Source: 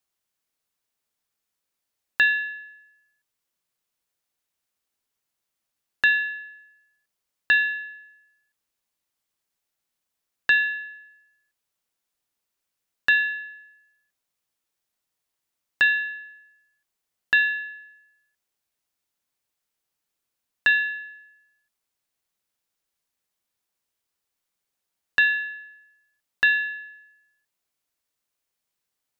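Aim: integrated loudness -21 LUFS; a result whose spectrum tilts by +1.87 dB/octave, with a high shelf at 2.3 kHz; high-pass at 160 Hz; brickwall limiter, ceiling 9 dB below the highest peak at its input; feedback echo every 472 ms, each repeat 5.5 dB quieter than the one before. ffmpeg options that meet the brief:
-af "highpass=160,highshelf=f=2300:g=6,alimiter=limit=0.188:level=0:latency=1,aecho=1:1:472|944|1416|1888|2360|2832|3304:0.531|0.281|0.149|0.079|0.0419|0.0222|0.0118,volume=1.88"

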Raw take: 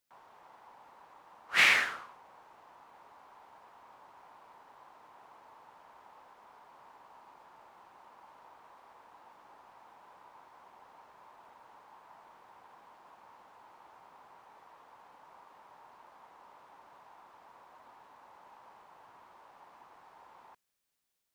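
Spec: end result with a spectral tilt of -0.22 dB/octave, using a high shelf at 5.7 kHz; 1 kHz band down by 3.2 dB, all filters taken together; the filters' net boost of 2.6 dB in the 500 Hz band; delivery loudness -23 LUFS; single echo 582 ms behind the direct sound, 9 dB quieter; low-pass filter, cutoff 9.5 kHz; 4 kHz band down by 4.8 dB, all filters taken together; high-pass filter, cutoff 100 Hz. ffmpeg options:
-af "highpass=100,lowpass=9500,equalizer=f=500:t=o:g=5,equalizer=f=1000:t=o:g=-5,equalizer=f=4000:t=o:g=-8.5,highshelf=f=5700:g=5,aecho=1:1:582:0.355,volume=2.24"

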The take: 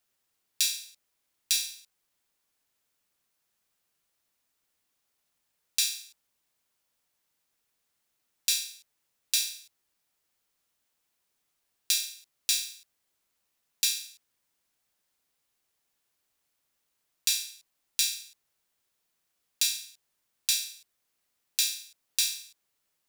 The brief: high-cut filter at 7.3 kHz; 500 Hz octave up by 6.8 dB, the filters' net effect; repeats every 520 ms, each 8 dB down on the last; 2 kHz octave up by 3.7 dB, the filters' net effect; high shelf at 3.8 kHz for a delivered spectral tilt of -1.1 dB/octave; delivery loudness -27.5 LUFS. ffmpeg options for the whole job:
-af "lowpass=7300,equalizer=f=500:t=o:g=7.5,equalizer=f=2000:t=o:g=7.5,highshelf=f=3800:g=-5.5,aecho=1:1:520|1040|1560|2080|2600:0.398|0.159|0.0637|0.0255|0.0102,volume=2.11"

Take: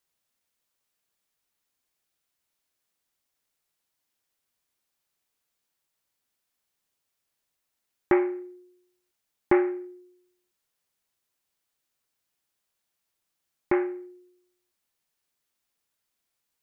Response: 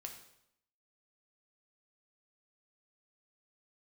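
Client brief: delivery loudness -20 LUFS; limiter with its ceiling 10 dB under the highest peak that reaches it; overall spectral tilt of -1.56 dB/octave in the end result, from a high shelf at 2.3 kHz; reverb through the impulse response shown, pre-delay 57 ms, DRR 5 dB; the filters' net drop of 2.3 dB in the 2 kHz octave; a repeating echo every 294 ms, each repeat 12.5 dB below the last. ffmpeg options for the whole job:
-filter_complex "[0:a]equalizer=f=2000:t=o:g=-5.5,highshelf=f=2300:g=6,alimiter=limit=0.133:level=0:latency=1,aecho=1:1:294|588|882:0.237|0.0569|0.0137,asplit=2[s0][s1];[1:a]atrim=start_sample=2205,adelay=57[s2];[s1][s2]afir=irnorm=-1:irlink=0,volume=0.891[s3];[s0][s3]amix=inputs=2:normalize=0,volume=5.01"

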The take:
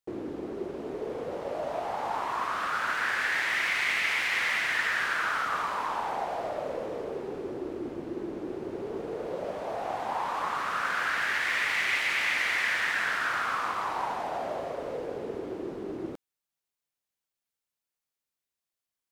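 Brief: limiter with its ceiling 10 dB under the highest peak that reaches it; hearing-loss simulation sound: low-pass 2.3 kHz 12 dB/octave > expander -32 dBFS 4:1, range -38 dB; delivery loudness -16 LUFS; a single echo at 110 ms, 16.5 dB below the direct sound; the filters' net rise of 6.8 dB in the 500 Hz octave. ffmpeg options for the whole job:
-af "equalizer=f=500:t=o:g=8.5,alimiter=level_in=1.12:limit=0.0631:level=0:latency=1,volume=0.891,lowpass=2300,aecho=1:1:110:0.15,agate=range=0.0126:threshold=0.0251:ratio=4,volume=7.5"

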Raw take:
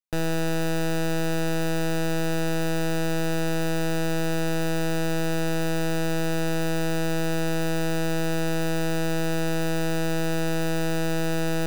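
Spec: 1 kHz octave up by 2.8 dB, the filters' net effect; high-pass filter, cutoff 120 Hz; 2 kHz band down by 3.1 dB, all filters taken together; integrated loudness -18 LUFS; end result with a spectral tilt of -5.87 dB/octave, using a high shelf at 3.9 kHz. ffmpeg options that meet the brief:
-af "highpass=120,equalizer=f=1000:t=o:g=5.5,equalizer=f=2000:t=o:g=-5,highshelf=f=3900:g=-8,volume=2.82"

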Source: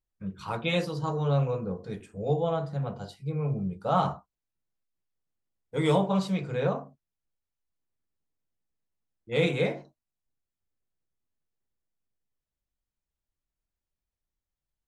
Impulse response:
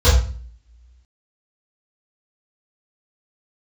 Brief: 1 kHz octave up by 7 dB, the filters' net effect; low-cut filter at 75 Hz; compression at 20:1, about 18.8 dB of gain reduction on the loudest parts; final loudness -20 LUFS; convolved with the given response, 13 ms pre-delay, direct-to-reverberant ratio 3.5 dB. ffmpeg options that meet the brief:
-filter_complex "[0:a]highpass=75,equalizer=f=1000:t=o:g=9,acompressor=threshold=0.0224:ratio=20,asplit=2[s0][s1];[1:a]atrim=start_sample=2205,adelay=13[s2];[s1][s2]afir=irnorm=-1:irlink=0,volume=0.0501[s3];[s0][s3]amix=inputs=2:normalize=0,volume=5.01"

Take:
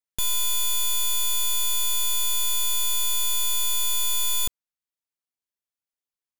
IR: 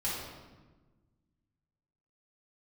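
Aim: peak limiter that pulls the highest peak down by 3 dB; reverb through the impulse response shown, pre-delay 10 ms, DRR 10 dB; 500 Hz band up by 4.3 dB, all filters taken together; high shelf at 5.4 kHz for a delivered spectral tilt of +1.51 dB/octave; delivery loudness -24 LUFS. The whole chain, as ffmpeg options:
-filter_complex "[0:a]equalizer=f=500:t=o:g=5,highshelf=f=5400:g=4.5,alimiter=limit=0.112:level=0:latency=1,asplit=2[s0][s1];[1:a]atrim=start_sample=2205,adelay=10[s2];[s1][s2]afir=irnorm=-1:irlink=0,volume=0.168[s3];[s0][s3]amix=inputs=2:normalize=0,volume=0.841"

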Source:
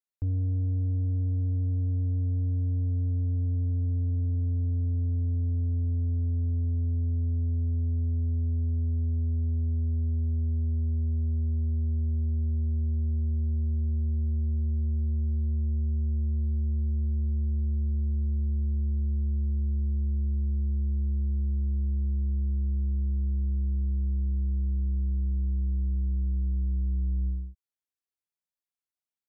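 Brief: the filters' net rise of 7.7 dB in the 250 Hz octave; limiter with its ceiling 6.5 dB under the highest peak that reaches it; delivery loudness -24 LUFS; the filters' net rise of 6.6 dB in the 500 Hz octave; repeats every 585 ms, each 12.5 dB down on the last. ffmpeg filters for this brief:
-af "equalizer=f=250:t=o:g=7.5,equalizer=f=500:t=o:g=5.5,alimiter=level_in=1.5:limit=0.0631:level=0:latency=1,volume=0.668,aecho=1:1:585|1170|1755:0.237|0.0569|0.0137,volume=2.66"

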